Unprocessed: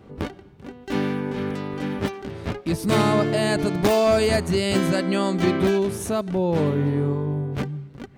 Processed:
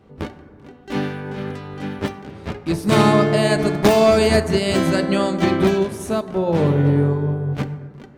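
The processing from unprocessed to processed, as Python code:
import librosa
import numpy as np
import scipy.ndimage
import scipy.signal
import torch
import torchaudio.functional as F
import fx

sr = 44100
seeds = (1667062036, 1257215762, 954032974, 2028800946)

y = fx.high_shelf(x, sr, hz=11000.0, db=-3.5)
y = fx.hum_notches(y, sr, base_hz=60, count=6)
y = fx.rev_plate(y, sr, seeds[0], rt60_s=2.4, hf_ratio=0.25, predelay_ms=0, drr_db=7.5)
y = fx.upward_expand(y, sr, threshold_db=-33.0, expansion=1.5)
y = y * librosa.db_to_amplitude(5.5)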